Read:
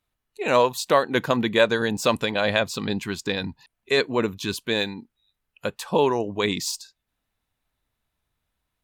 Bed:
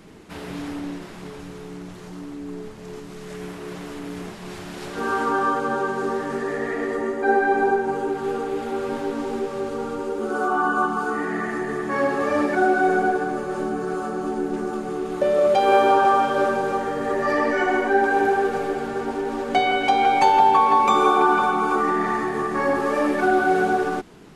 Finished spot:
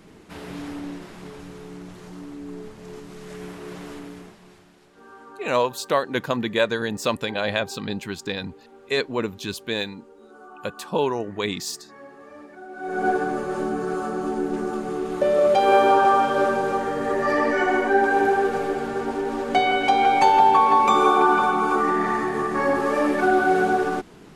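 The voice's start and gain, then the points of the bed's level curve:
5.00 s, -2.5 dB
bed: 3.94 s -2.5 dB
4.86 s -22.5 dB
12.68 s -22.5 dB
13.08 s 0 dB

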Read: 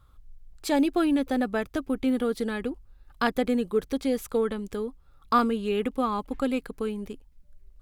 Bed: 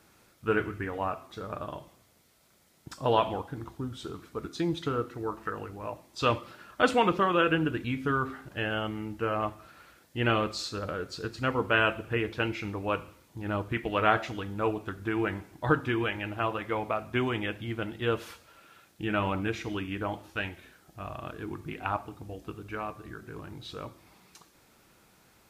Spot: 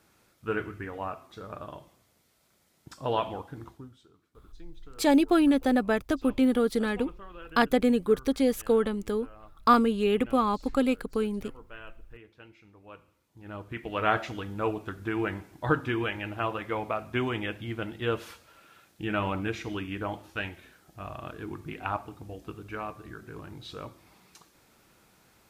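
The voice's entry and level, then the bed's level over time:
4.35 s, +2.0 dB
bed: 3.69 s -3.5 dB
4.08 s -22 dB
12.68 s -22 dB
14.15 s -0.5 dB

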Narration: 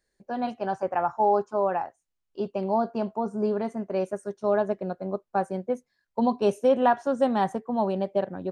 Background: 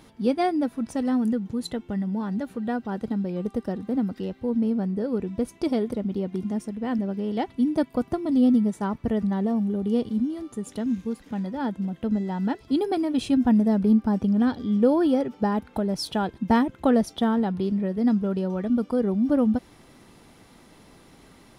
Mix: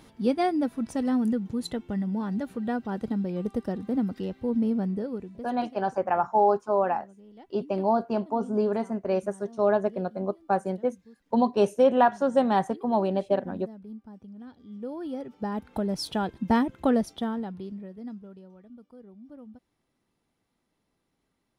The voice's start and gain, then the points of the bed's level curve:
5.15 s, +1.0 dB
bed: 4.92 s -1.5 dB
5.73 s -23 dB
14.46 s -23 dB
15.80 s -2.5 dB
16.89 s -2.5 dB
18.71 s -25.5 dB

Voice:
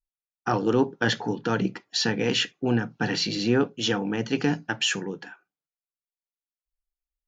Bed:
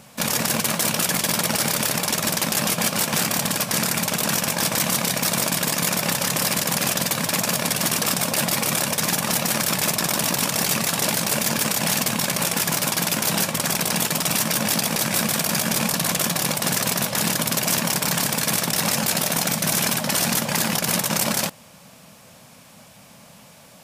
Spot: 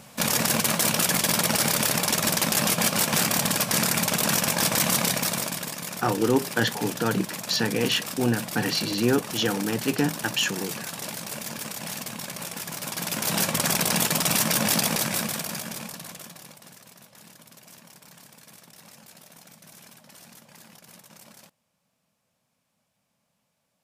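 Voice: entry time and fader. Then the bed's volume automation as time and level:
5.55 s, 0.0 dB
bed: 5.07 s -1 dB
5.80 s -12.5 dB
12.73 s -12.5 dB
13.50 s -1 dB
14.86 s -1 dB
16.81 s -28 dB

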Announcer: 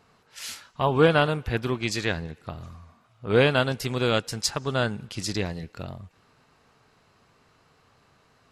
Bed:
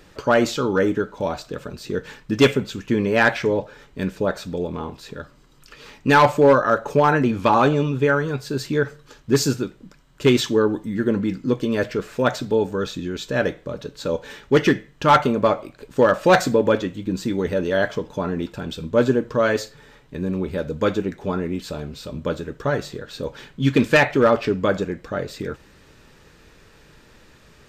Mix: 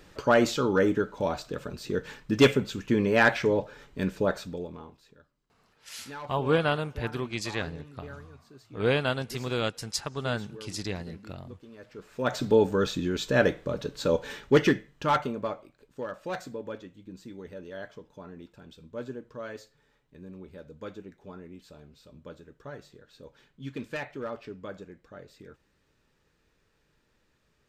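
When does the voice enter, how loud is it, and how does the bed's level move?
5.50 s, -5.5 dB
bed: 4.33 s -4 dB
5.33 s -27 dB
11.79 s -27 dB
12.45 s -1 dB
14.30 s -1 dB
15.98 s -20 dB

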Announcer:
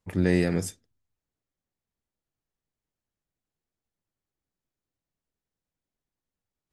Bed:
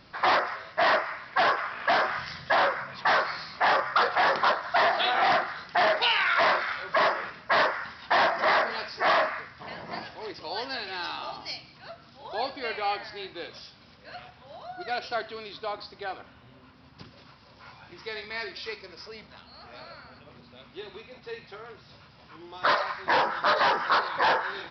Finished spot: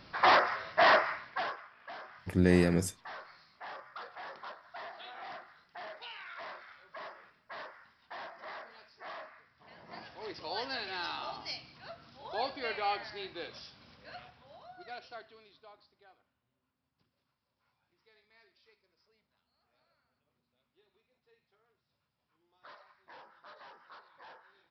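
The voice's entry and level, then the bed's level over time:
2.20 s, -2.0 dB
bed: 1.09 s -0.5 dB
1.71 s -22.5 dB
9.41 s -22.5 dB
10.32 s -4 dB
14.02 s -4 dB
16.42 s -30.5 dB

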